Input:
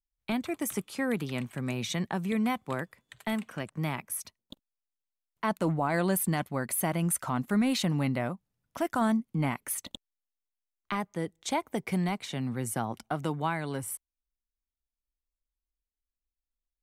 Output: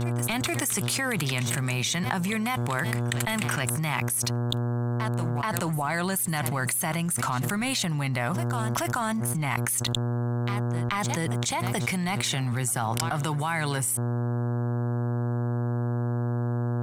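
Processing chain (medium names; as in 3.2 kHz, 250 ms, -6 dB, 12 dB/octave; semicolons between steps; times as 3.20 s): graphic EQ 250/500/8000 Hz -11/-8/+6 dB; reverse echo 431 ms -22 dB; waveshaping leveller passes 1; mains buzz 120 Hz, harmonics 14, -49 dBFS -8 dB/octave; level flattener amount 100%; trim -7 dB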